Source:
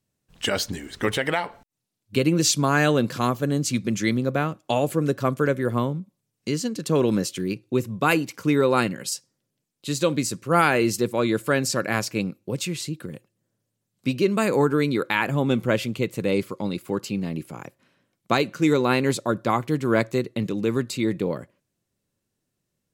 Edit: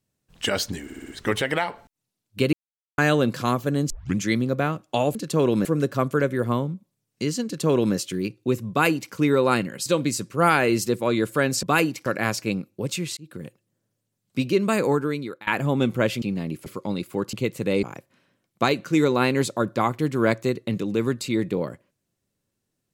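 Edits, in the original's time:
0.84 stutter 0.06 s, 5 plays
2.29–2.74 mute
3.66 tape start 0.28 s
6.71–7.21 copy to 4.91
7.96–8.39 copy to 11.75
9.12–9.98 cut
12.86–13.11 fade in
14.48–15.16 fade out, to -22.5 dB
15.91–16.41 swap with 17.08–17.52

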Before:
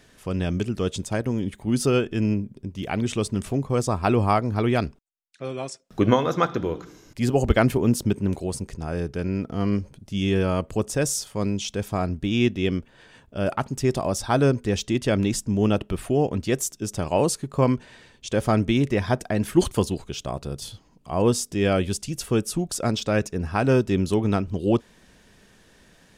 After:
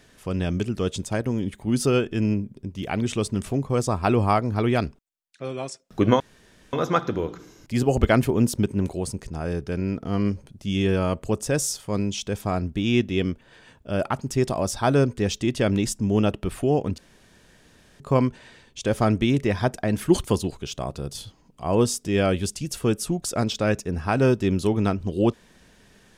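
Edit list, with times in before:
6.2 insert room tone 0.53 s
16.45–17.47 room tone

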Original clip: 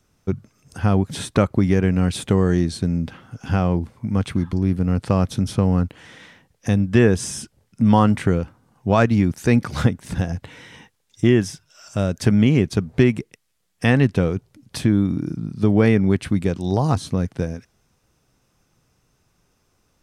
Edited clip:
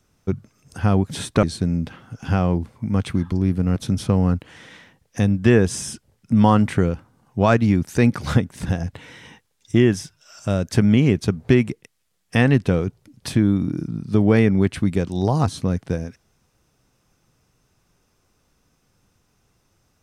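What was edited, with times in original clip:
1.43–2.64 cut
4.97–5.25 cut

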